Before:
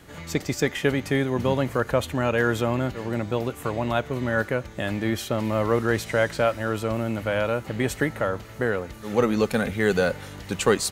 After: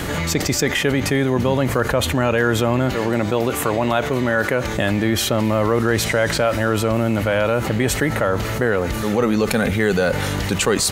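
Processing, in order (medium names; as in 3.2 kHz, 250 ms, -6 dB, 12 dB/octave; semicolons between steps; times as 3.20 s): 2.89–4.74 s: bass shelf 150 Hz -8.5 dB; level flattener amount 70%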